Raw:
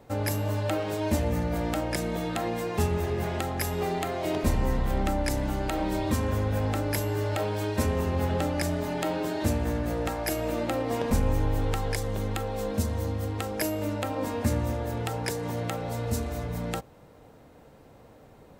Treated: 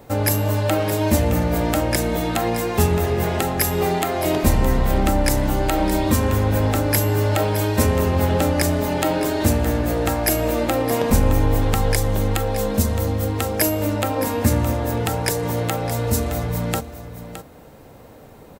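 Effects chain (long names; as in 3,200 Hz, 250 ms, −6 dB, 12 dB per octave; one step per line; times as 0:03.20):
high-shelf EQ 11,000 Hz +10.5 dB
single-tap delay 616 ms −12 dB
level +8 dB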